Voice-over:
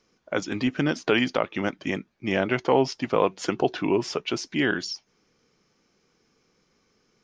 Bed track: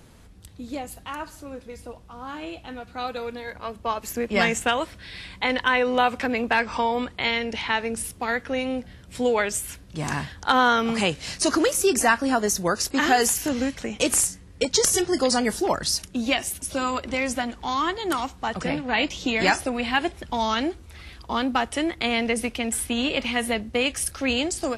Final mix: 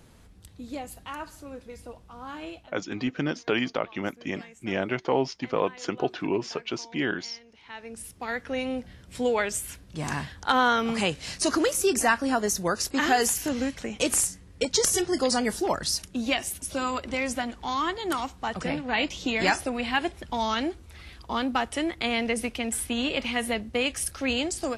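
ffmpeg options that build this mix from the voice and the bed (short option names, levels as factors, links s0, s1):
-filter_complex "[0:a]adelay=2400,volume=0.631[s0];[1:a]volume=9.44,afade=t=out:st=2.49:d=0.25:silence=0.0749894,afade=t=in:st=7.61:d=1.02:silence=0.0707946[s1];[s0][s1]amix=inputs=2:normalize=0"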